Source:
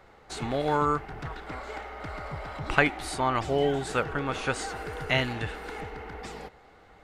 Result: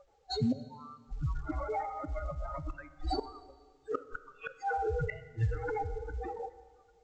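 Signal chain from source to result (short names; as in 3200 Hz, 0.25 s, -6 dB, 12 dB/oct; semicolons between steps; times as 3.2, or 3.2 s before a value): spectral contrast raised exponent 3.2; flipped gate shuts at -24 dBFS, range -29 dB; in parallel at -8 dB: soft clip -30 dBFS, distortion -17 dB; 1.91–3.07 on the sum: compressor 10:1, threshold -34 dBFS, peak gain reduction 6.5 dB; spectral noise reduction 20 dB; plate-style reverb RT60 1.6 s, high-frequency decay 0.85×, DRR 13 dB; gain +2.5 dB; µ-law 128 kbps 16000 Hz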